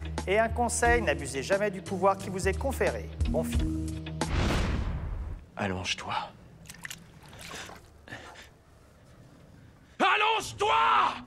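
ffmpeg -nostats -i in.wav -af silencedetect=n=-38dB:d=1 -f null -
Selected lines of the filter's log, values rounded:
silence_start: 8.42
silence_end: 10.00 | silence_duration: 1.58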